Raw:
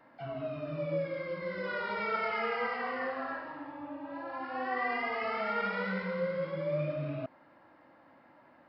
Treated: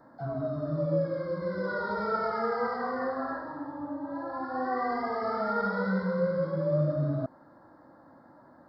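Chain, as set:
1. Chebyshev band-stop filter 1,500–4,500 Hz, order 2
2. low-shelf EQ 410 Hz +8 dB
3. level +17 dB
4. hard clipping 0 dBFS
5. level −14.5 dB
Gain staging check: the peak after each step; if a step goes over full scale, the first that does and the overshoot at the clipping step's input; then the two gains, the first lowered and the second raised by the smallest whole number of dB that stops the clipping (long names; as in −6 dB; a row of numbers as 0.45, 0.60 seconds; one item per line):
−22.0, −19.0, −2.0, −2.0, −16.5 dBFS
no step passes full scale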